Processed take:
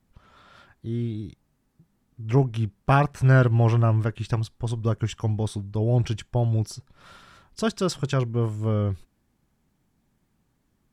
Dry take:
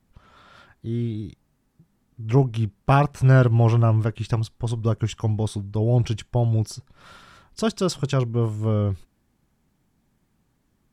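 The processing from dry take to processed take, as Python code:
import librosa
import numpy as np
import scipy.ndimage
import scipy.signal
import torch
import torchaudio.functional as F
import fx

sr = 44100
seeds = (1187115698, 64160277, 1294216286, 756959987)

y = fx.dynamic_eq(x, sr, hz=1700.0, q=2.5, threshold_db=-46.0, ratio=4.0, max_db=5)
y = y * librosa.db_to_amplitude(-2.0)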